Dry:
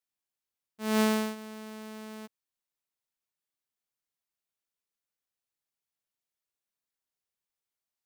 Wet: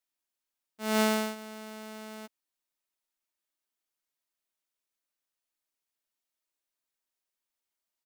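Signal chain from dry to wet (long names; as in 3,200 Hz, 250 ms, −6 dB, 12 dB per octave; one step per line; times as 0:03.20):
parametric band 93 Hz −14 dB 1.3 octaves
comb filter 3.2 ms, depth 33%
level +1.5 dB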